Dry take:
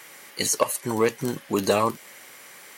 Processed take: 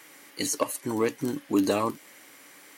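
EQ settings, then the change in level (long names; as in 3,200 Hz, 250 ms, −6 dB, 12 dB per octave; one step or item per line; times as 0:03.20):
parametric band 290 Hz +14.5 dB 0.27 octaves
−5.5 dB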